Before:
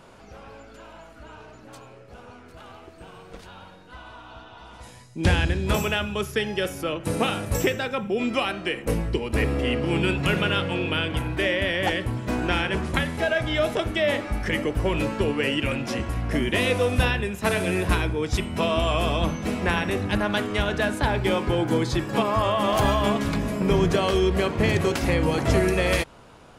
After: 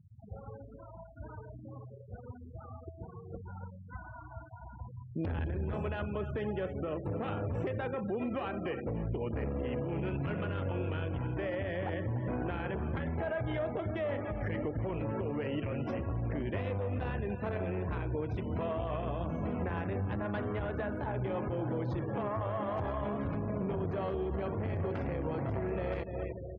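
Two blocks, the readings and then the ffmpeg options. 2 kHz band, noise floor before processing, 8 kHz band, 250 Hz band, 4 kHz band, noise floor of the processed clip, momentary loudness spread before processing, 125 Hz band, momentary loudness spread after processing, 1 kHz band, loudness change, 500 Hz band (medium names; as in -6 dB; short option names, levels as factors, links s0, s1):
-17.5 dB, -48 dBFS, under -40 dB, -10.5 dB, -25.5 dB, -50 dBFS, 6 LU, -8.0 dB, 13 LU, -12.0 dB, -11.5 dB, -10.5 dB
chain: -af "acrusher=bits=4:mode=log:mix=0:aa=0.000001,equalizer=f=96:w=1.5:g=11.5,aeval=exprs='(tanh(7.08*val(0)+0.5)-tanh(0.5))/7.08':c=same,highpass=63,aecho=1:1:291|582|873|1164:0.2|0.0898|0.0404|0.0182,afftfilt=real='re*gte(hypot(re,im),0.0178)':imag='im*gte(hypot(re,im),0.0178)':win_size=1024:overlap=0.75,lowpass=1700,adynamicequalizer=threshold=0.00891:dfrequency=550:dqfactor=0.83:tfrequency=550:tqfactor=0.83:attack=5:release=100:ratio=0.375:range=2:mode=boostabove:tftype=bell,alimiter=level_in=1.33:limit=0.0631:level=0:latency=1:release=229,volume=0.75"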